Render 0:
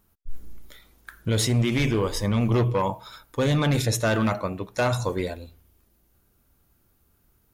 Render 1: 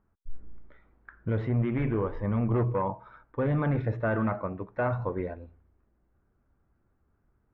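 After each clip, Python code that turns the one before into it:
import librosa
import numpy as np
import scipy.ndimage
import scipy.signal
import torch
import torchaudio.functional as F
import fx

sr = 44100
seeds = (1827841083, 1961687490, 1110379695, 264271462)

y = scipy.signal.sosfilt(scipy.signal.butter(4, 1800.0, 'lowpass', fs=sr, output='sos'), x)
y = F.gain(torch.from_numpy(y), -4.5).numpy()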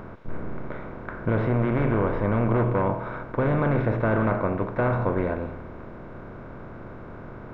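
y = fx.bin_compress(x, sr, power=0.4)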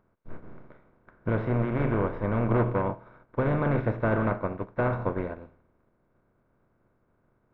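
y = fx.upward_expand(x, sr, threshold_db=-42.0, expansion=2.5)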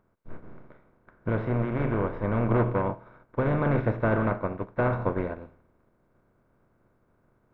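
y = fx.rider(x, sr, range_db=10, speed_s=2.0)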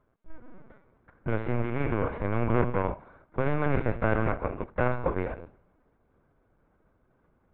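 y = fx.dynamic_eq(x, sr, hz=2500.0, q=1.5, threshold_db=-51.0, ratio=4.0, max_db=6)
y = fx.lpc_vocoder(y, sr, seeds[0], excitation='pitch_kept', order=16)
y = F.gain(torch.from_numpy(y), -1.0).numpy()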